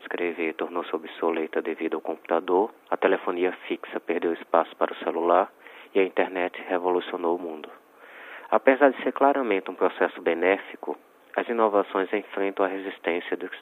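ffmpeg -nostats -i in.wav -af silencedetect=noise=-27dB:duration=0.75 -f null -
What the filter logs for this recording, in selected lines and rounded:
silence_start: 7.64
silence_end: 8.53 | silence_duration: 0.88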